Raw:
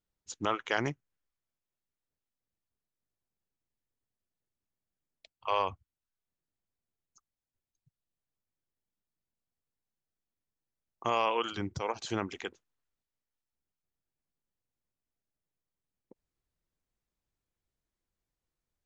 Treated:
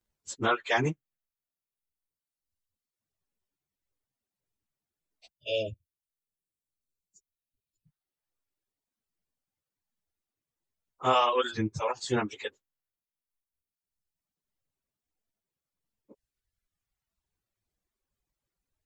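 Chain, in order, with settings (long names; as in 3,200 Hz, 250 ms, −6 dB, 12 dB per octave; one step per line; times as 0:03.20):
phase-vocoder pitch shift without resampling +1.5 semitones
time-frequency box erased 0:05.32–0:07.85, 660–2,300 Hz
reverb reduction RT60 1.7 s
level +8 dB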